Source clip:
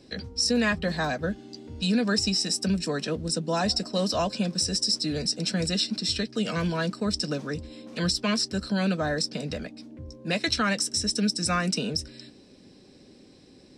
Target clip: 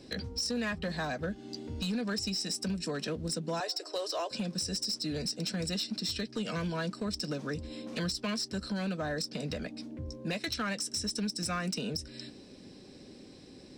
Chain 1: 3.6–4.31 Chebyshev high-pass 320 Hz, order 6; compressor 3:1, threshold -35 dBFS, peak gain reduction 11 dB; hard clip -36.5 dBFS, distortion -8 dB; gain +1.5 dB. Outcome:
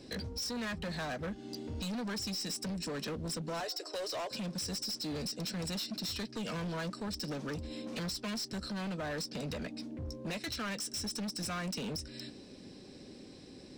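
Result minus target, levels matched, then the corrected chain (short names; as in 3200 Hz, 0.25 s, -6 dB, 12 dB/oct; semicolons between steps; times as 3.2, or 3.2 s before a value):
hard clip: distortion +12 dB
3.6–4.31 Chebyshev high-pass 320 Hz, order 6; compressor 3:1, threshold -35 dBFS, peak gain reduction 11 dB; hard clip -29 dBFS, distortion -20 dB; gain +1.5 dB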